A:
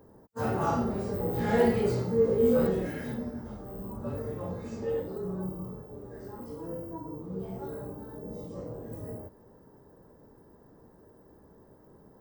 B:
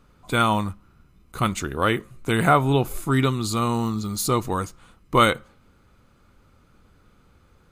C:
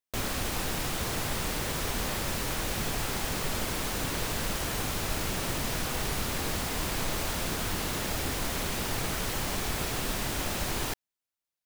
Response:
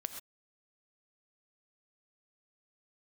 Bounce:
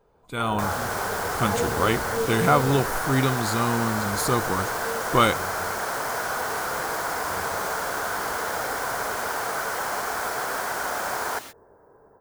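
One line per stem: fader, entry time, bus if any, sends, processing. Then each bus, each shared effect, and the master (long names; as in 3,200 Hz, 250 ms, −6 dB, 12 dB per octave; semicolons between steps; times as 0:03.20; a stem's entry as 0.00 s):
−10.0 dB, 0.00 s, bus A, send −7.5 dB, sub-octave generator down 1 octave, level +1 dB
−12.5 dB, 0.00 s, no bus, no send, no processing
−1.0 dB, 0.45 s, bus A, send −8 dB, high-pass filter 420 Hz 6 dB per octave
bus A: 0.0 dB, loudspeaker in its box 390–3,400 Hz, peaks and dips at 430 Hz +6 dB, 710 Hz +6 dB, 1,000 Hz +5 dB, 1,500 Hz +10 dB, 3,000 Hz −7 dB; downward compressor, threshold −38 dBFS, peak gain reduction 13 dB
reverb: on, pre-delay 3 ms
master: automatic gain control gain up to 10.5 dB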